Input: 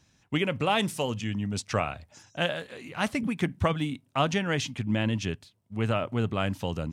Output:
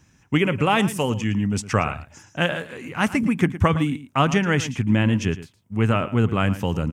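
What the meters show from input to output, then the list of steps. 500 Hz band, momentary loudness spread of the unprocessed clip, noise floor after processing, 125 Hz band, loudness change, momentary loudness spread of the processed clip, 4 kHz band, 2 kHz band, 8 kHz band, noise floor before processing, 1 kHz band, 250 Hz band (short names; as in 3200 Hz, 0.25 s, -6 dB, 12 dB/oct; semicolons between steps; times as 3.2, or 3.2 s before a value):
+5.0 dB, 9 LU, -59 dBFS, +8.5 dB, +7.0 dB, 8 LU, +2.5 dB, +7.0 dB, +5.5 dB, -67 dBFS, +6.5 dB, +8.5 dB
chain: fifteen-band EQ 630 Hz -6 dB, 4000 Hz -12 dB, 10000 Hz -3 dB; echo 0.112 s -15 dB; gain +8.5 dB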